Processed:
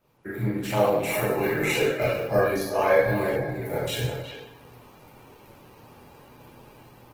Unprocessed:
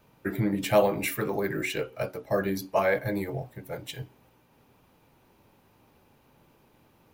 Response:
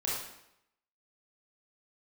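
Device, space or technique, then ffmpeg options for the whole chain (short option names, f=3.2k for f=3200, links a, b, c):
speakerphone in a meeting room: -filter_complex "[1:a]atrim=start_sample=2205[a];[0:a][a]afir=irnorm=-1:irlink=0,asplit=2[b][c];[c]adelay=360,highpass=300,lowpass=3.4k,asoftclip=type=hard:threshold=-12dB,volume=-9dB[d];[b][d]amix=inputs=2:normalize=0,dynaudnorm=f=170:g=7:m=12.5dB,volume=-6.5dB" -ar 48000 -c:a libopus -b:a 16k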